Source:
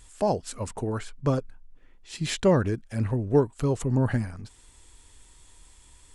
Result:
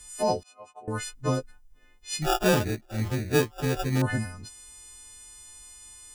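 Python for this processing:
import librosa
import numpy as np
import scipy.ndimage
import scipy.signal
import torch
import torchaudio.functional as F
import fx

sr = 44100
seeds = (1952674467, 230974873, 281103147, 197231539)

y = fx.freq_snap(x, sr, grid_st=3)
y = fx.vowel_filter(y, sr, vowel='a', at=(0.43, 0.88))
y = fx.sample_hold(y, sr, seeds[0], rate_hz=2100.0, jitter_pct=0, at=(2.22, 4.02))
y = F.gain(torch.from_numpy(y), -1.5).numpy()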